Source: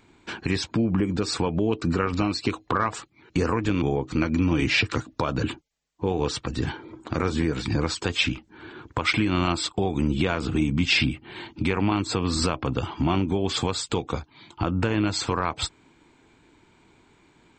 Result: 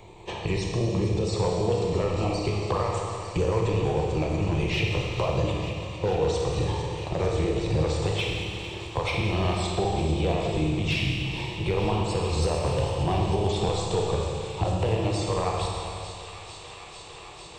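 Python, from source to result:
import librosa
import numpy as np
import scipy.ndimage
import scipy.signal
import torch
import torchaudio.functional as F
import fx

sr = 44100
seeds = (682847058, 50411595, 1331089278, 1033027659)

p1 = fx.pitch_trill(x, sr, semitones=1.0, every_ms=80)
p2 = fx.rider(p1, sr, range_db=3, speed_s=0.5)
p3 = p1 + (p2 * librosa.db_to_amplitude(-2.0))
p4 = fx.peak_eq(p3, sr, hz=4900.0, db=-7.5, octaves=0.22)
p5 = fx.fixed_phaser(p4, sr, hz=620.0, stages=4)
p6 = np.clip(10.0 ** (15.0 / 20.0) * p5, -1.0, 1.0) / 10.0 ** (15.0 / 20.0)
p7 = fx.high_shelf(p6, sr, hz=3000.0, db=-10.5)
p8 = p7 + fx.echo_wet_highpass(p7, sr, ms=449, feedback_pct=84, hz=1600.0, wet_db=-14, dry=0)
p9 = fx.rev_schroeder(p8, sr, rt60_s=1.9, comb_ms=26, drr_db=-1.0)
p10 = fx.band_squash(p9, sr, depth_pct=40)
y = p10 * librosa.db_to_amplitude(-2.5)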